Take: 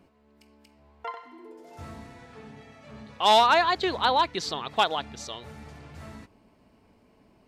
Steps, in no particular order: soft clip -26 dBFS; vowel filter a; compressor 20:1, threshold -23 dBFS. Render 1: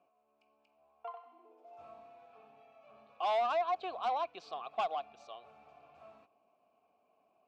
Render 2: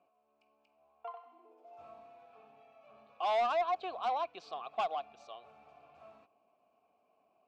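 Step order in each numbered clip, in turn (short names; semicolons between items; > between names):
vowel filter > compressor > soft clip; vowel filter > soft clip > compressor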